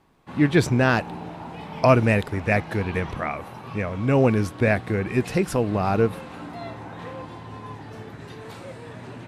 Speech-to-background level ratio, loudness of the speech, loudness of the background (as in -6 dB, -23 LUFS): 15.5 dB, -22.5 LUFS, -38.0 LUFS